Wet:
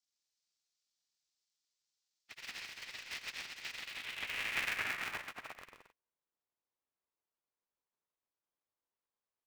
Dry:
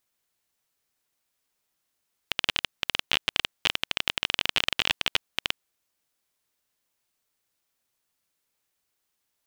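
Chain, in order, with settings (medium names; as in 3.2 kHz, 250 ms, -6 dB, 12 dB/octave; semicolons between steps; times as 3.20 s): knee-point frequency compression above 1.2 kHz 1.5:1; 2.41–3.83 s: treble shelf 2.6 kHz +6.5 dB; on a send: bouncing-ball echo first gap 130 ms, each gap 0.75×, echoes 5; on the sum: band-pass sweep 4.9 kHz -> 730 Hz, 3.72–5.81 s; polarity switched at an audio rate 260 Hz; trim -7 dB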